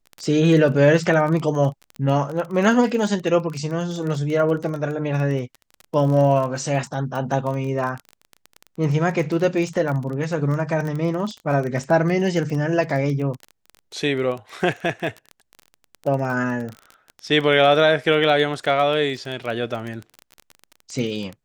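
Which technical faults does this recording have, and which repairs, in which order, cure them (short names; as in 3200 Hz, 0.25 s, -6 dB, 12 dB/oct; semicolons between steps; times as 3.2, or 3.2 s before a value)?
crackle 22/s -26 dBFS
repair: de-click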